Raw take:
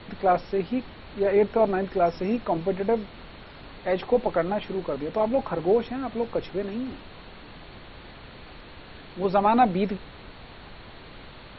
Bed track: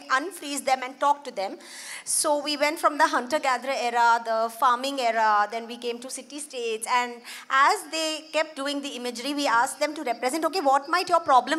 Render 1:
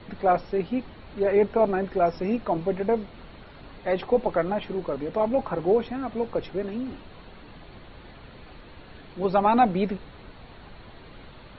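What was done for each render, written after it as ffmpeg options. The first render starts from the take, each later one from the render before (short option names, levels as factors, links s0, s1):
-af "afftdn=nr=6:nf=-46"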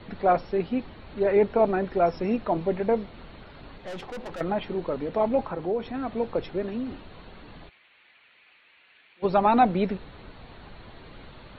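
-filter_complex "[0:a]asettb=1/sr,asplit=3[s0][s1][s2];[s0]atrim=end=3.764[s3];[s1]atrim=start=3.76:end=4.41,asetpts=PTS-STARTPTS,afade=t=in:d=0.004:c=qsin,afade=t=out:st=0.646:d=0.004:c=qsin,aeval=exprs='(tanh(50.1*val(0)+0.4)-tanh(0.4))/50.1':c=same[s4];[s2]atrim=start=4.406[s5];[s3][s4]acrossfade=d=0.004:c1=hsin:c2=qsin[s6];[s6][s5]acrossfade=d=0.004:c1=qsin:c2=hsin,asettb=1/sr,asplit=3[s7][s8][s9];[s7]atrim=end=5.444[s10];[s8]atrim=start=5.44:end=5.94,asetpts=PTS-STARTPTS,afade=t=in:d=0.004:c=qsin,afade=t=out:st=0.496:d=0.004:c=qsin,acompressor=threshold=0.02:ratio=1.5:attack=3.2:release=140:knee=1:detection=peak[s11];[s9]atrim=start=5.936[s12];[s10][s11]acrossfade=d=0.004:c1=hsin:c2=qsin[s13];[s13][s12]acrossfade=d=0.004:c1=qsin:c2=hsin,asplit=3[s14][s15][s16];[s14]afade=t=out:st=7.68:d=0.02[s17];[s15]bandpass=f=2400:t=q:w=2.7,afade=t=in:st=7.68:d=0.02,afade=t=out:st=9.22:d=0.02[s18];[s16]afade=t=in:st=9.22:d=0.02[s19];[s17][s18][s19]amix=inputs=3:normalize=0"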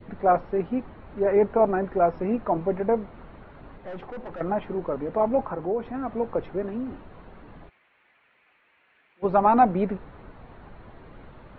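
-af "lowpass=1700,adynamicequalizer=threshold=0.0178:dfrequency=1100:dqfactor=0.98:tfrequency=1100:tqfactor=0.98:attack=5:release=100:ratio=0.375:range=1.5:mode=boostabove:tftype=bell"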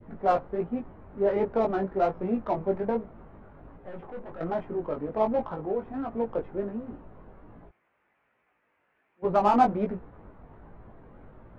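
-af "adynamicsmooth=sensitivity=2:basefreq=1600,flanger=delay=17:depth=3.7:speed=1.3"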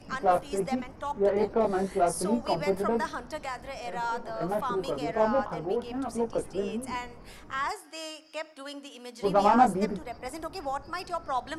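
-filter_complex "[1:a]volume=0.251[s0];[0:a][s0]amix=inputs=2:normalize=0"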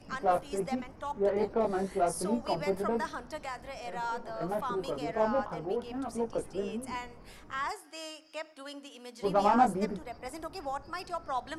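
-af "volume=0.668"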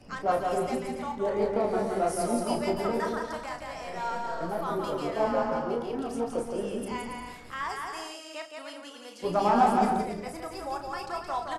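-filter_complex "[0:a]asplit=2[s0][s1];[s1]adelay=34,volume=0.447[s2];[s0][s2]amix=inputs=2:normalize=0,aecho=1:1:170|280.5|352.3|399|429.4:0.631|0.398|0.251|0.158|0.1"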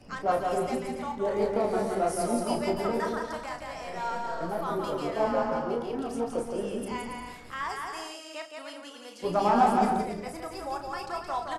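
-filter_complex "[0:a]asettb=1/sr,asplit=3[s0][s1][s2];[s0]atrim=end=1.304[s3];[s1]atrim=start=1.3:end=1.95,asetpts=PTS-STARTPTS,afade=t=in:d=0.004:c=qsin,afade=t=out:st=0.646:d=0.004:c=qsin,highshelf=f=5700:g=6.5[s4];[s2]atrim=start=1.946[s5];[s3][s4]acrossfade=d=0.004:c1=hsin:c2=qsin[s6];[s6][s5]acrossfade=d=0.004:c1=qsin:c2=hsin"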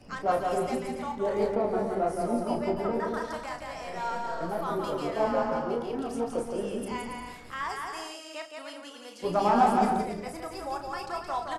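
-filter_complex "[0:a]asettb=1/sr,asplit=3[s0][s1][s2];[s0]atrim=end=1.554[s3];[s1]atrim=start=1.55:end=3.14,asetpts=PTS-STARTPTS,afade=t=in:d=0.004:c=qsin,afade=t=out:st=1.586:d=0.004:c=qsin,highshelf=f=2700:g=-12[s4];[s2]atrim=start=3.136[s5];[s3][s4]acrossfade=d=0.004:c1=hsin:c2=qsin[s6];[s6][s5]acrossfade=d=0.004:c1=qsin:c2=hsin"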